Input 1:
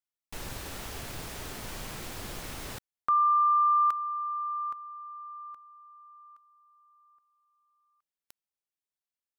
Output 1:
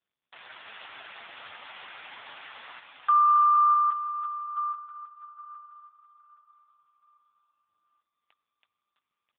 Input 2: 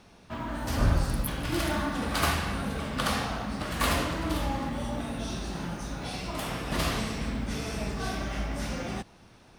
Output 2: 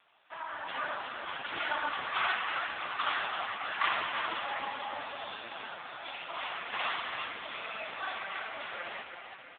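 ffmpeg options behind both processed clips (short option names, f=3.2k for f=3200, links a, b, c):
-filter_complex "[0:a]highpass=920,dynaudnorm=f=100:g=7:m=6dB,asplit=2[a][b];[b]aecho=0:1:328|656|984|1312|1640|1968|2296:0.473|0.256|0.138|0.0745|0.0402|0.0217|0.0117[c];[a][c]amix=inputs=2:normalize=0" -ar 8000 -c:a libopencore_amrnb -b:a 5150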